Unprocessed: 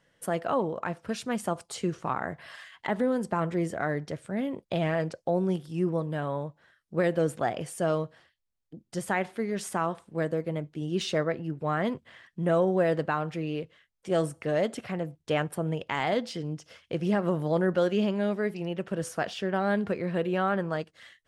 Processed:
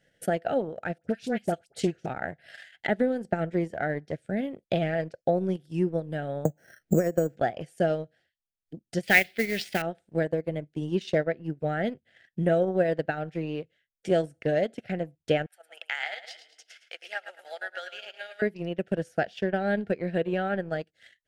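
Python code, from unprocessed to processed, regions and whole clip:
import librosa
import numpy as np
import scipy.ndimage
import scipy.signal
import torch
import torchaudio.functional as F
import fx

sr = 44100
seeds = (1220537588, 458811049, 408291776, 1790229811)

y = fx.chain(x, sr, fx.dispersion(late='highs', ms=60.0, hz=1500.0),
    fx.doppler_dist(depth_ms=0.13), at=(0.98, 2.06))
y = fx.chain(y, sr, fx.lowpass(hz=1200.0, slope=6),
    fx.resample_bad(factor=6, down='filtered', up='hold'),
    fx.band_squash(depth_pct=100), at=(6.45, 7.37))
y = fx.chain(y, sr, fx.band_shelf(hz=3200.0, db=15.0, octaves=1.7),
    fx.mod_noise(seeds[0], snr_db=12), at=(9.03, 9.82))
y = fx.chain(y, sr, fx.highpass(hz=930.0, slope=24),
    fx.echo_feedback(ms=109, feedback_pct=43, wet_db=-7), at=(15.46, 18.42))
y = scipy.signal.sosfilt(scipy.signal.cheby1(2, 1.0, [740.0, 1500.0], 'bandstop', fs=sr, output='sos'), y)
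y = fx.dynamic_eq(y, sr, hz=9300.0, q=0.8, threshold_db=-57.0, ratio=4.0, max_db=-6)
y = fx.transient(y, sr, attack_db=6, sustain_db=-11)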